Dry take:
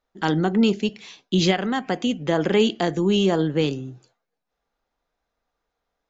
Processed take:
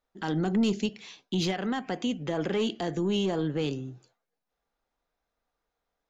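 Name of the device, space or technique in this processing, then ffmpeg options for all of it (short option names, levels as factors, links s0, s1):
soft clipper into limiter: -filter_complex "[0:a]asoftclip=type=tanh:threshold=0.251,alimiter=limit=0.141:level=0:latency=1:release=65,asettb=1/sr,asplit=3[s0][s1][s2];[s0]atrim=end=0.454[s3];[s1]atrim=start=0.45:end=0.86,asetpts=PTS-STARTPTS,afade=t=in:d=0.004:c=qsin,afade=t=out:st=0.406:d=0.004:c=qsin,bass=f=250:g=4,treble=f=4000:g=8[s4];[s2]atrim=start=0.856[s5];[s3][s4]acrossfade=d=0.004:c1=hsin:c2=qsin[s6];[s6][s5]acrossfade=d=0.004:c1=qsin:c2=hsin,volume=0.631"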